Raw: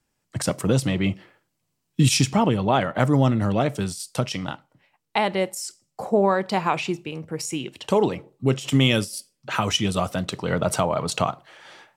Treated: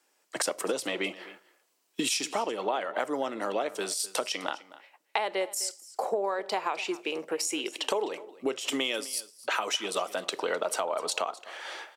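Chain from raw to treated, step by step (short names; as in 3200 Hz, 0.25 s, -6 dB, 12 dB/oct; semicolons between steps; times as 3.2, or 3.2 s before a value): HPF 360 Hz 24 dB/oct; compressor 6:1, threshold -34 dBFS, peak gain reduction 17 dB; on a send: echo 0.256 s -18.5 dB; on the sum: gain +6.5 dB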